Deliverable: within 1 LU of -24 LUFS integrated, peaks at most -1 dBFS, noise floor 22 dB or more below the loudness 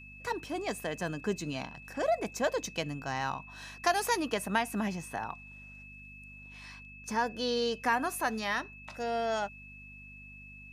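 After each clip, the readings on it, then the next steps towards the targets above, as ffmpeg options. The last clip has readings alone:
hum 50 Hz; harmonics up to 250 Hz; hum level -50 dBFS; steady tone 2600 Hz; tone level -49 dBFS; loudness -33.0 LUFS; peak -13.5 dBFS; loudness target -24.0 LUFS
-> -af "bandreject=f=50:t=h:w=4,bandreject=f=100:t=h:w=4,bandreject=f=150:t=h:w=4,bandreject=f=200:t=h:w=4,bandreject=f=250:t=h:w=4"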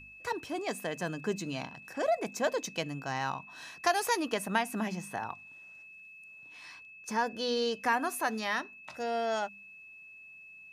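hum none; steady tone 2600 Hz; tone level -49 dBFS
-> -af "bandreject=f=2.6k:w=30"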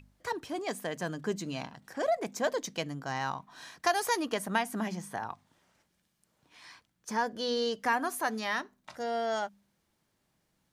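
steady tone none; loudness -33.5 LUFS; peak -13.5 dBFS; loudness target -24.0 LUFS
-> -af "volume=9.5dB"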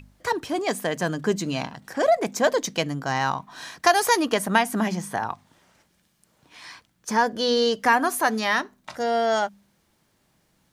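loudness -24.0 LUFS; peak -4.0 dBFS; noise floor -67 dBFS

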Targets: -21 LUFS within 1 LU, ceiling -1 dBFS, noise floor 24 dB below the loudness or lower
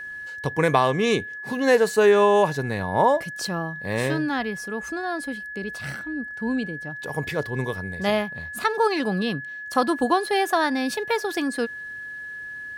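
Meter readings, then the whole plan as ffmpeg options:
steady tone 1700 Hz; tone level -33 dBFS; loudness -24.0 LUFS; peak -5.5 dBFS; loudness target -21.0 LUFS
-> -af "bandreject=f=1.7k:w=30"
-af "volume=3dB"

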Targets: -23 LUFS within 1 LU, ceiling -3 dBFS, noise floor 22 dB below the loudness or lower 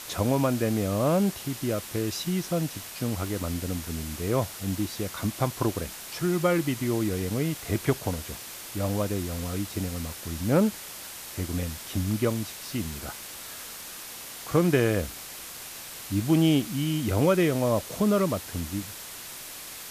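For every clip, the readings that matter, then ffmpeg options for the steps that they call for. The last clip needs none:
noise floor -41 dBFS; noise floor target -51 dBFS; loudness -28.5 LUFS; peak -9.5 dBFS; loudness target -23.0 LUFS
-> -af "afftdn=nr=10:nf=-41"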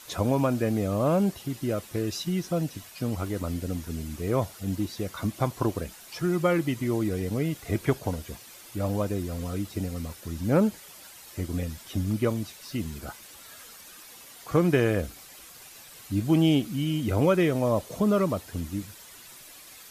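noise floor -48 dBFS; noise floor target -50 dBFS
-> -af "afftdn=nr=6:nf=-48"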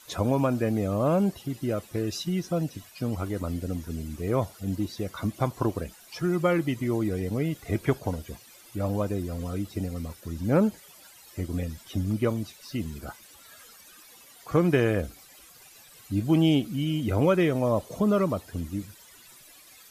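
noise floor -52 dBFS; loudness -28.0 LUFS; peak -10.0 dBFS; loudness target -23.0 LUFS
-> -af "volume=5dB"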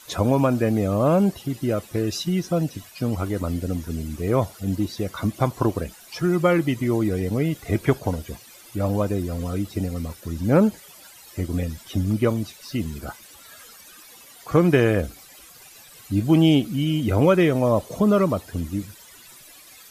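loudness -23.0 LUFS; peak -5.0 dBFS; noise floor -47 dBFS

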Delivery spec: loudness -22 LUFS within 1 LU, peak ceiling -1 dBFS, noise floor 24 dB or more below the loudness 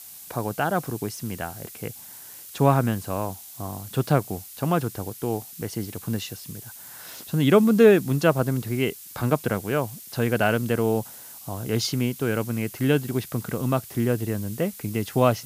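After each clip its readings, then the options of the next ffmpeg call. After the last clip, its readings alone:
noise floor -43 dBFS; noise floor target -49 dBFS; loudness -24.5 LUFS; peak -4.5 dBFS; loudness target -22.0 LUFS
-> -af "afftdn=nr=6:nf=-43"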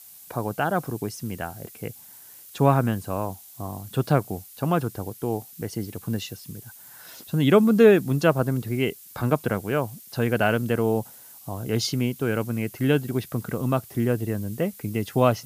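noise floor -47 dBFS; noise floor target -49 dBFS
-> -af "afftdn=nr=6:nf=-47"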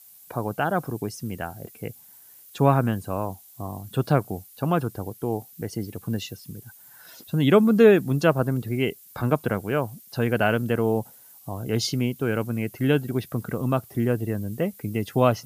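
noise floor -50 dBFS; loudness -24.5 LUFS; peak -4.5 dBFS; loudness target -22.0 LUFS
-> -af "volume=2.5dB"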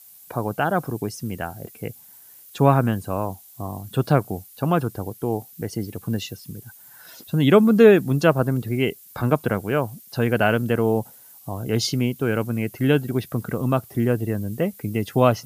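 loudness -22.0 LUFS; peak -2.0 dBFS; noise floor -48 dBFS

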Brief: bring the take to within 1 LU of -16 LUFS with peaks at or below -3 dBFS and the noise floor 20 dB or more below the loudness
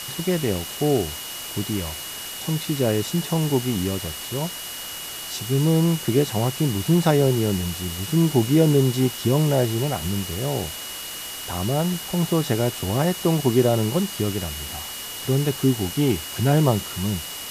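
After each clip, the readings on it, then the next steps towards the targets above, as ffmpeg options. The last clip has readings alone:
steady tone 2900 Hz; tone level -37 dBFS; noise floor -34 dBFS; noise floor target -43 dBFS; loudness -23.0 LUFS; peak -5.5 dBFS; loudness target -16.0 LUFS
-> -af "bandreject=f=2.9k:w=30"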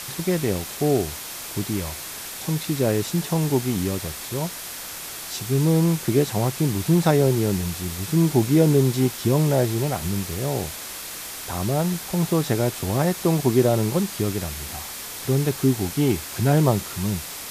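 steady tone none; noise floor -35 dBFS; noise floor target -43 dBFS
-> -af "afftdn=nr=8:nf=-35"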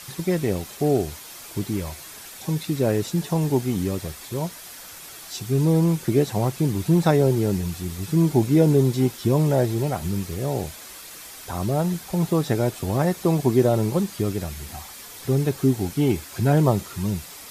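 noise floor -41 dBFS; noise floor target -43 dBFS
-> -af "afftdn=nr=6:nf=-41"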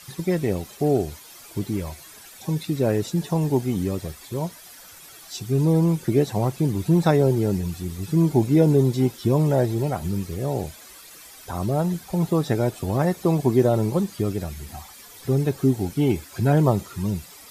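noise floor -45 dBFS; loudness -23.0 LUFS; peak -6.5 dBFS; loudness target -16.0 LUFS
-> -af "volume=7dB,alimiter=limit=-3dB:level=0:latency=1"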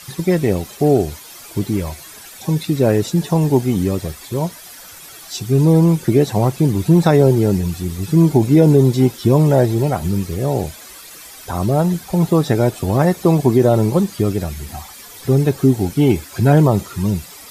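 loudness -16.0 LUFS; peak -3.0 dBFS; noise floor -38 dBFS

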